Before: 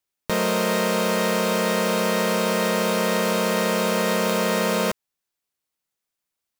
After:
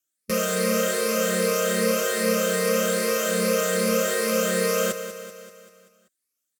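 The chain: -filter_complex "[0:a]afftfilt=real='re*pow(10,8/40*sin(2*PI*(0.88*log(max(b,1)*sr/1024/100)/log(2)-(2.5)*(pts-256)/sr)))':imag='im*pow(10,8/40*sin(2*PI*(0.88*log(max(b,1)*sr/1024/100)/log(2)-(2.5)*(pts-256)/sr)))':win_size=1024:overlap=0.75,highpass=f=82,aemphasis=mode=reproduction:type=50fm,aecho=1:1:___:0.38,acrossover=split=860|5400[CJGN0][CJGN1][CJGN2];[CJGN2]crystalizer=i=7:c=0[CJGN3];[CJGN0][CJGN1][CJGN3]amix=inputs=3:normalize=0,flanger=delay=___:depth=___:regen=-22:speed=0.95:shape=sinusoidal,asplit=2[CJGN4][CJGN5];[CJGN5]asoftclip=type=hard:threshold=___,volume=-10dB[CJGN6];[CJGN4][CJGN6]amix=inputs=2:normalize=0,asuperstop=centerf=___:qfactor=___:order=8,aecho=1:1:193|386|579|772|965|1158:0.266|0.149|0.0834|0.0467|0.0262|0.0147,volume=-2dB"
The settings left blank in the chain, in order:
3.9, 2.6, 4, -26.5dB, 880, 2.2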